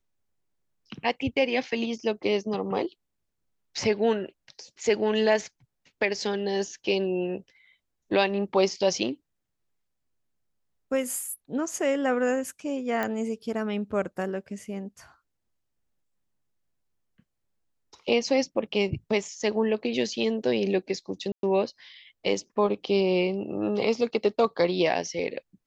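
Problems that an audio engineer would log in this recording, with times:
13.03 s: pop -15 dBFS
21.32–21.43 s: dropout 112 ms

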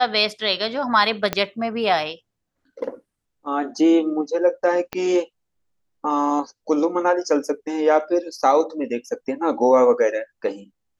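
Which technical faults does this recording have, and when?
1.33 s: pop -7 dBFS
4.93 s: pop -12 dBFS

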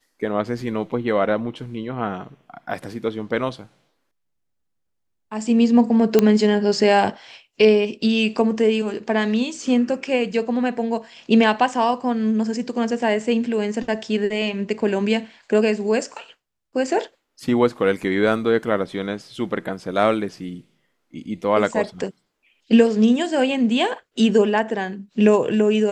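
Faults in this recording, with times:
6.19 s: pop -3 dBFS

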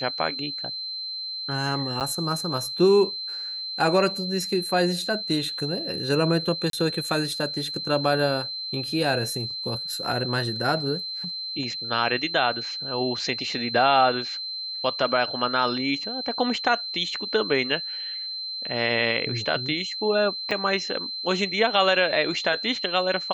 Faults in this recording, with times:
whine 4.1 kHz -30 dBFS
2.00–2.01 s: dropout 8 ms
6.70–6.73 s: dropout 32 ms
20.51 s: dropout 4.7 ms

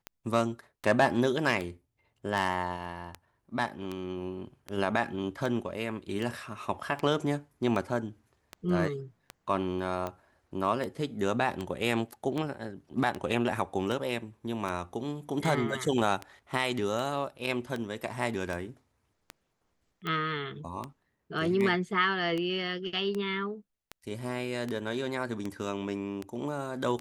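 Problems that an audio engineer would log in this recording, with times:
tick 78 rpm -21 dBFS

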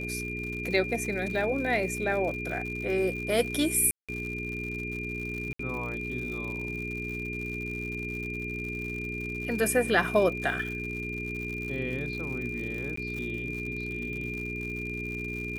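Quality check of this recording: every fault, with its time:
crackle 120 per s -36 dBFS
hum 60 Hz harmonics 7 -37 dBFS
whine 2.4 kHz -35 dBFS
3.91–4.09 s: dropout 176 ms
5.53–5.59 s: dropout 64 ms
12.96–12.97 s: dropout

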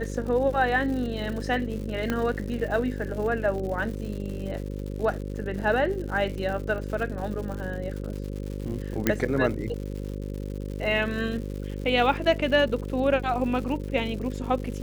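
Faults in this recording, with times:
buzz 50 Hz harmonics 11 -33 dBFS
crackle 180 per s -35 dBFS
2.10 s: pop -13 dBFS
9.07 s: pop -7 dBFS

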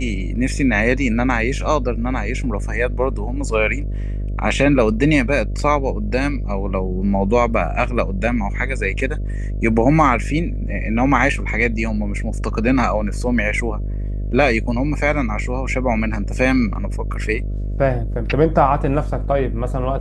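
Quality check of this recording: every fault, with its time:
buzz 50 Hz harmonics 13 -23 dBFS

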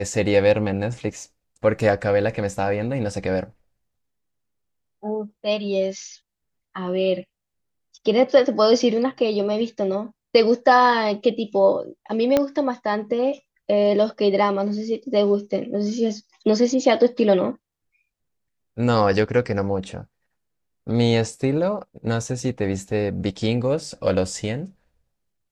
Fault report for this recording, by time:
12.37 s: pop -6 dBFS

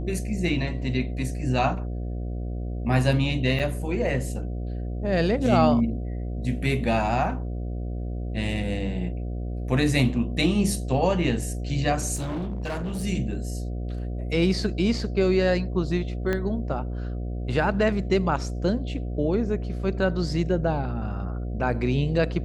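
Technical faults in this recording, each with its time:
buzz 60 Hz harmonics 12 -30 dBFS
3.59–3.60 s: dropout 6.6 ms
12.15–13.04 s: clipped -26.5 dBFS
16.33 s: pop -14 dBFS

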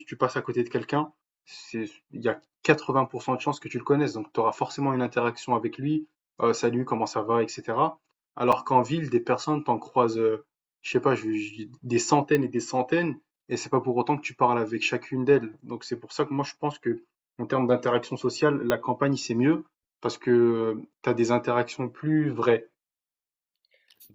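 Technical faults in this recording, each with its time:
8.52–8.53 s: dropout 5.4 ms
12.35 s: pop -12 dBFS
18.70 s: pop -9 dBFS

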